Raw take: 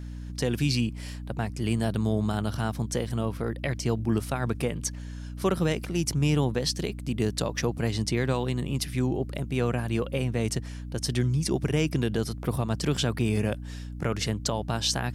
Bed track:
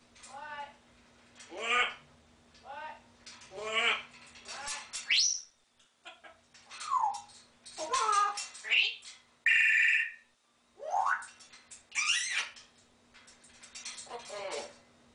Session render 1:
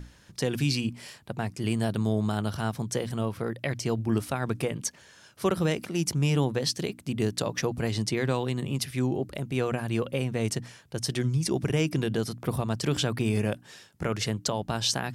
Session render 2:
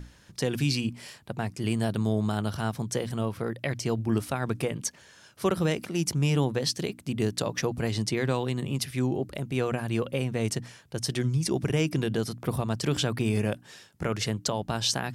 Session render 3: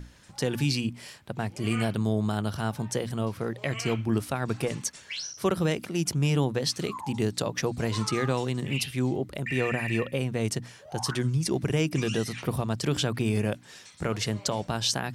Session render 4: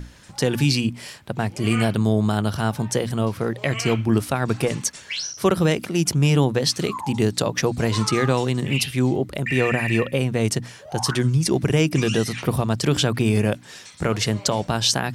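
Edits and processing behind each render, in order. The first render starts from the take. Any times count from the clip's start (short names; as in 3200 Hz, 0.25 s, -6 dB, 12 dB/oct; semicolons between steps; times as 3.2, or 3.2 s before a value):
notches 60/120/180/240/300 Hz
nothing audible
add bed track -9 dB
gain +7 dB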